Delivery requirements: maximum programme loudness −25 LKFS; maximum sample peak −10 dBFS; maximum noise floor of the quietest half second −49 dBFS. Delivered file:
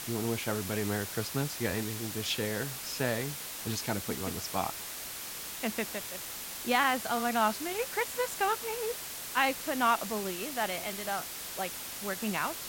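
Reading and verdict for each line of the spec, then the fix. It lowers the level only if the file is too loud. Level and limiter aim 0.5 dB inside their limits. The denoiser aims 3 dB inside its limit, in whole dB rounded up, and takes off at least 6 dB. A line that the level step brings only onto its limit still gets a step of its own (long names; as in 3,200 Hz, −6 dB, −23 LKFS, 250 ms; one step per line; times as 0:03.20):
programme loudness −32.5 LKFS: in spec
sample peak −13.5 dBFS: in spec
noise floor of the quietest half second −41 dBFS: out of spec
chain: broadband denoise 11 dB, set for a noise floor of −41 dBFS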